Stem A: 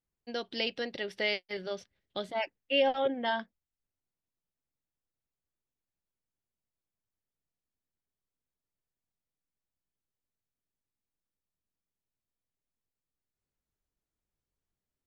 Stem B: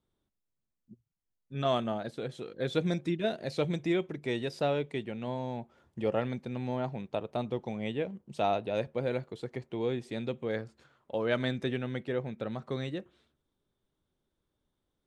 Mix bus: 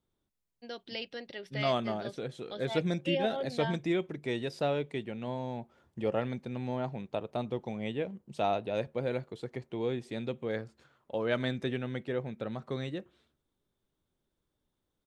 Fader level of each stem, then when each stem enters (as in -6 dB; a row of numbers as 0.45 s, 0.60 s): -6.5 dB, -1.0 dB; 0.35 s, 0.00 s